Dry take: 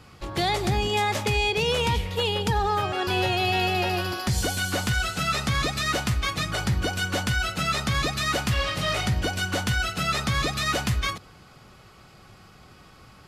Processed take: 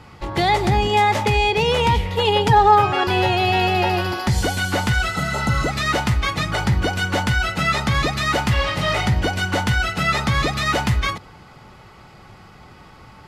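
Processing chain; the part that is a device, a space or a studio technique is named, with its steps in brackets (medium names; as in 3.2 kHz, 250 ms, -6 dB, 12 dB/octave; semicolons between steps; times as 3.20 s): 2.24–3.04 s: comb 7.2 ms, depth 69%; inside a helmet (treble shelf 4.3 kHz -8 dB; small resonant body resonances 880/2000 Hz, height 10 dB, ringing for 50 ms); 5.16–5.68 s: spectral replace 1.1–6 kHz before; trim +6 dB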